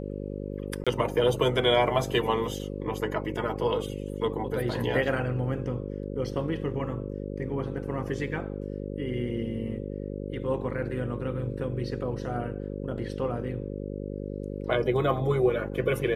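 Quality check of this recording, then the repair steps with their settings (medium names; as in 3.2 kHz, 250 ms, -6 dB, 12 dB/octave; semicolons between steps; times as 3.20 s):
buzz 50 Hz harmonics 11 -35 dBFS
0.84–0.87 s: dropout 26 ms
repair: de-hum 50 Hz, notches 11; interpolate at 0.84 s, 26 ms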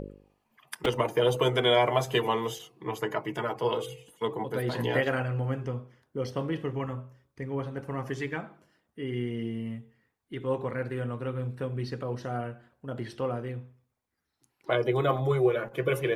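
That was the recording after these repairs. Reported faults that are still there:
nothing left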